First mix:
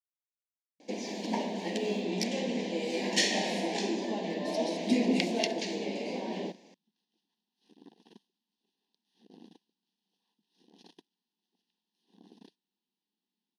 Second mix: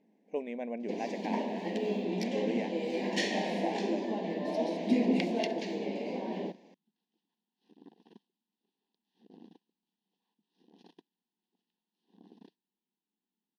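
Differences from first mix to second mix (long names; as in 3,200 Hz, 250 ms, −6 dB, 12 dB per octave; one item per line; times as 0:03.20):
speech: unmuted
master: add parametric band 8,100 Hz −12.5 dB 2.3 octaves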